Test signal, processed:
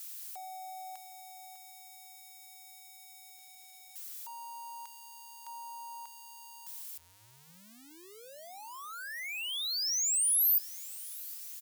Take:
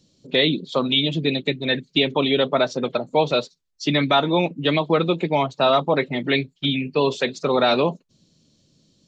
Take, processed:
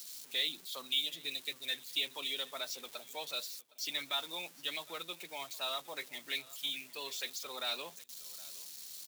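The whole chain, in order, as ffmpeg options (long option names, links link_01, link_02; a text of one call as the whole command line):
ffmpeg -i in.wav -filter_complex "[0:a]aeval=exprs='val(0)+0.5*0.0237*sgn(val(0))':channel_layout=same,aderivative,bandreject=frequency=50:width_type=h:width=6,bandreject=frequency=100:width_type=h:width=6,bandreject=frequency=150:width_type=h:width=6,asplit=2[link_01][link_02];[link_02]aecho=0:1:763|1526:0.0841|0.0269[link_03];[link_01][link_03]amix=inputs=2:normalize=0,volume=-6dB" out.wav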